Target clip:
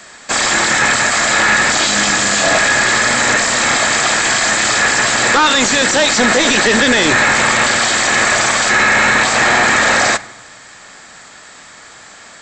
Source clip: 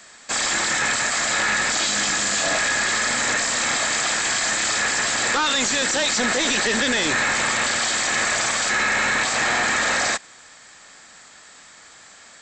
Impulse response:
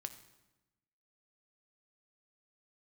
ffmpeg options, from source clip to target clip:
-filter_complex "[0:a]asplit=2[link_01][link_02];[link_02]lowpass=frequency=2000:poles=1[link_03];[1:a]atrim=start_sample=2205[link_04];[link_03][link_04]afir=irnorm=-1:irlink=0,volume=4dB[link_05];[link_01][link_05]amix=inputs=2:normalize=0,volume=4.5dB"

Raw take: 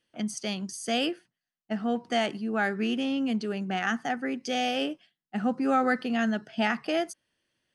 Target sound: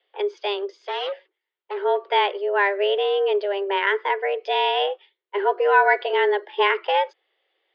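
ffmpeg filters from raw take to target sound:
ffmpeg -i in.wav -filter_complex "[0:a]asettb=1/sr,asplit=3[link_01][link_02][link_03];[link_01]atrim=end=0.814[link_04];[link_02]atrim=start=0.81:end=1.78,asetpts=PTS-STARTPTS,afade=type=in:duration=0.004:curve=qsin,afade=type=out:start_time=0.966:duration=0.004:curve=qsin,volume=32dB,asoftclip=hard,volume=-32dB[link_05];[link_03]atrim=start=1.776[link_06];[link_04][link_05]acrossfade=duration=0.004:curve1=hsin:curve2=qsin[link_07];[link_07][link_06]acrossfade=duration=0.004:curve1=qsin:curve2=hsin,asettb=1/sr,asplit=3[link_08][link_09][link_10];[link_08]atrim=end=5.364[link_11];[link_09]atrim=start=5.36:end=6.13,asetpts=PTS-STARTPTS,afade=type=in:duration=0.004:curve=qsin,afade=type=out:start_time=0.766:duration=0.004:curve=qsin,aecho=1:1:6.4:0.54,atrim=end_sample=33957[link_12];[link_10]atrim=start=6.126[link_13];[link_11][link_12]acrossfade=duration=0.004:curve1=hsin:curve2=qsin[link_14];[link_14][link_13]acrossfade=duration=0.004:curve1=qsin:curve2=hsin,highpass=frequency=150:width_type=q:width=0.5412,highpass=frequency=150:width_type=q:width=1.307,lowpass=frequency=3600:width_type=q:width=0.5176,lowpass=frequency=3600:width_type=q:width=0.7071,lowpass=frequency=3600:width_type=q:width=1.932,afreqshift=200,volume=7dB" out.wav

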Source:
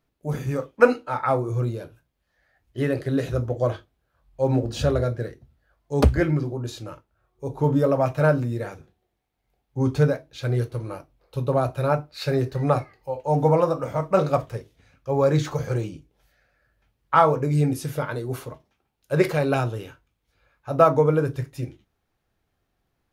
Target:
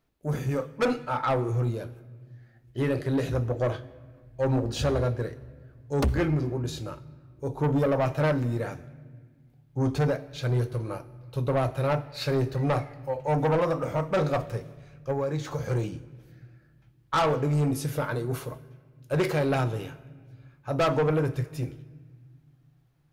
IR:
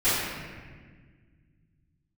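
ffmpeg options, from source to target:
-filter_complex "[0:a]asettb=1/sr,asplit=3[link_01][link_02][link_03];[link_01]atrim=end=15.114[link_04];[link_02]atrim=start=15.11:end=15.66,asetpts=PTS-STARTPTS,afade=type=in:duration=0.004:curve=qsin,afade=type=out:start_time=0.546:duration=0.004:curve=qsin,acompressor=threshold=-25dB:ratio=6[link_05];[link_03]atrim=start=15.656[link_06];[link_04][link_05]acrossfade=duration=0.004:curve1=hsin:curve2=qsin[link_07];[link_07][link_06]acrossfade=duration=0.004:curve1=qsin:curve2=hsin,asoftclip=type=tanh:threshold=-19.5dB,asplit=2[link_08][link_09];[1:a]atrim=start_sample=2205,highshelf=frequency=9200:gain=11,adelay=53[link_10];[link_09][link_10]afir=irnorm=-1:irlink=0,volume=-33.5dB[link_11];[link_08][link_11]amix=inputs=2:normalize=0"

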